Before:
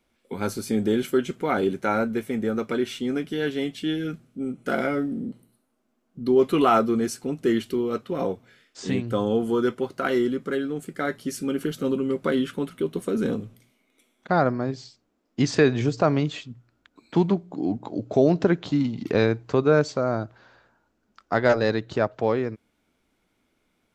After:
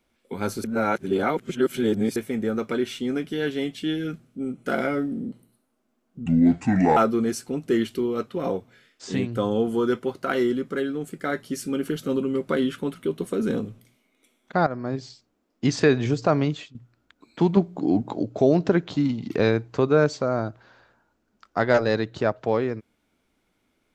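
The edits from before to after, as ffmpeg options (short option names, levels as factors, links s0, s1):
-filter_complex "[0:a]asplit=9[s0][s1][s2][s3][s4][s5][s6][s7][s8];[s0]atrim=end=0.642[s9];[s1]atrim=start=0.638:end=2.162,asetpts=PTS-STARTPTS,areverse[s10];[s2]atrim=start=2.158:end=6.264[s11];[s3]atrim=start=6.26:end=6.72,asetpts=PTS-STARTPTS,asetrate=28665,aresample=44100,atrim=end_sample=31209,asetpts=PTS-STARTPTS[s12];[s4]atrim=start=6.716:end=14.42,asetpts=PTS-STARTPTS,afade=t=out:st=7.7:d=0.004:c=hsin:silence=0.199526[s13];[s5]atrim=start=14.42:end=16.5,asetpts=PTS-STARTPTS,afade=t=in:d=0.28:silence=0.199526,afade=t=out:st=1.82:d=0.26:silence=0.237137[s14];[s6]atrim=start=16.5:end=17.322,asetpts=PTS-STARTPTS,afade=t=in:d=0.004:c=hsin:silence=0.237137[s15];[s7]atrim=start=17.318:end=17.982,asetpts=PTS-STARTPTS,volume=1.68[s16];[s8]atrim=start=17.978[s17];[s9][s10]acrossfade=d=0.004:c1=hsin:c2=hsin[s18];[s18][s11]acrossfade=d=0.004:c1=hsin:c2=hsin[s19];[s19][s12]acrossfade=d=0.004:c1=hsin:c2=hsin[s20];[s13][s14][s15]concat=n=3:v=0:a=1[s21];[s20][s21]acrossfade=d=0.004:c1=hsin:c2=hsin[s22];[s22][s16]acrossfade=d=0.004:c1=hsin:c2=hsin[s23];[s23][s17]acrossfade=d=0.004:c1=hsin:c2=hsin"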